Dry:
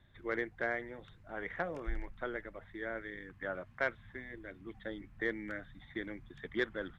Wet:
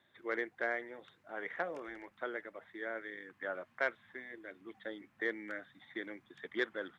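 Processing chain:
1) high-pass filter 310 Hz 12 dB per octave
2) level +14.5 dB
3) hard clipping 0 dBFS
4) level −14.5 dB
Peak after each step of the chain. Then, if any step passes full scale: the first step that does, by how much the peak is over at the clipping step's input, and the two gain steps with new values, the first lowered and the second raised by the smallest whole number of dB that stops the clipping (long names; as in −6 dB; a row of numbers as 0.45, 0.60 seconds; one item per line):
−20.0, −5.5, −5.5, −20.0 dBFS
no step passes full scale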